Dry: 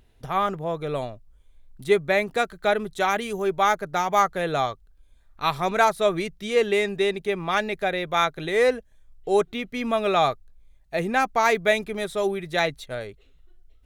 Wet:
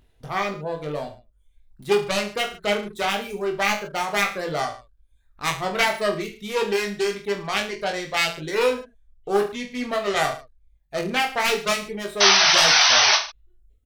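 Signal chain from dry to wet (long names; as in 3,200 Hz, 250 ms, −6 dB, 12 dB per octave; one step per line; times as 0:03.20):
phase distortion by the signal itself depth 0.37 ms
sound drawn into the spectrogram noise, 0:12.20–0:13.17, 590–6,200 Hz −14 dBFS
reverb reduction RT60 0.75 s
on a send: reverse bouncing-ball delay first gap 20 ms, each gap 1.2×, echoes 5
on the sum: level −2 dB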